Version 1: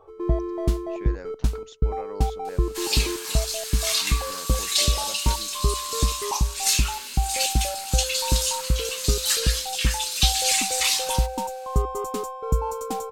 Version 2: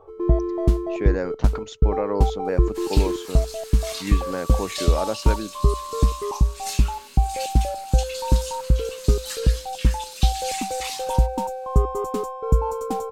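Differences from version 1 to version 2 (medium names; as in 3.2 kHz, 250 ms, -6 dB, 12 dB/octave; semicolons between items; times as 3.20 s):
speech +11.0 dB; second sound -6.5 dB; master: add tilt shelf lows +4.5 dB, about 1.4 kHz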